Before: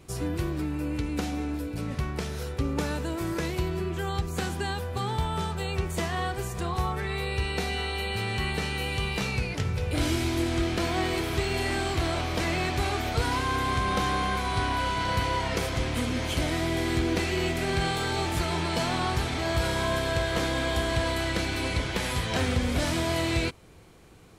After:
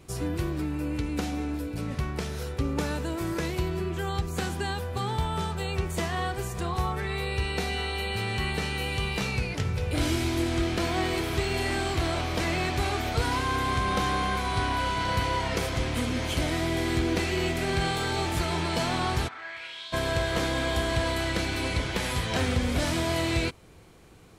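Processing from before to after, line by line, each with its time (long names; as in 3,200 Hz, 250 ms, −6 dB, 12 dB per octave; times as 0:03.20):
0:19.27–0:19.92: resonant band-pass 1,200 Hz → 4,100 Hz, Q 3.3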